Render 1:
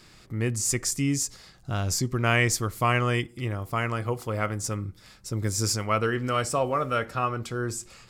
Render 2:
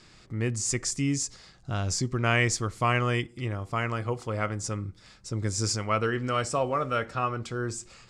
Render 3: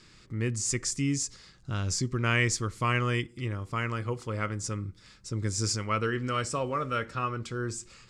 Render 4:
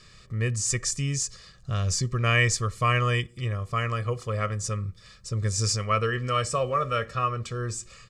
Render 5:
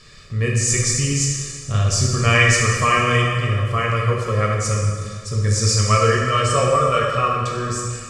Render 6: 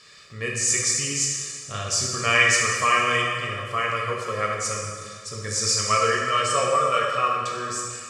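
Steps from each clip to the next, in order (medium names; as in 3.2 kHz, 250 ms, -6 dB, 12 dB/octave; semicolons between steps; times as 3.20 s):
low-pass 8.5 kHz 24 dB/octave; trim -1.5 dB
peaking EQ 710 Hz -10 dB 0.53 oct; trim -1 dB
comb 1.7 ms, depth 75%; trim +1.5 dB
plate-style reverb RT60 1.9 s, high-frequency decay 0.85×, DRR -2.5 dB; trim +4.5 dB
high-pass 630 Hz 6 dB/octave; trim -1.5 dB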